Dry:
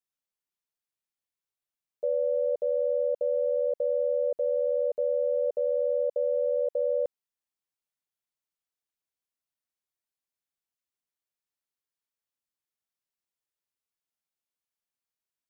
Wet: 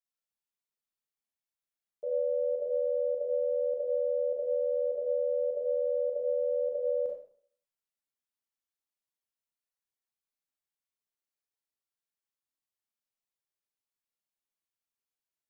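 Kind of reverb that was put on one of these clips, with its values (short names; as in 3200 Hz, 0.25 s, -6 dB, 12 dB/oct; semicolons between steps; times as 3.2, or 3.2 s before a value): Schroeder reverb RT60 0.52 s, combs from 28 ms, DRR -2 dB; gain -8 dB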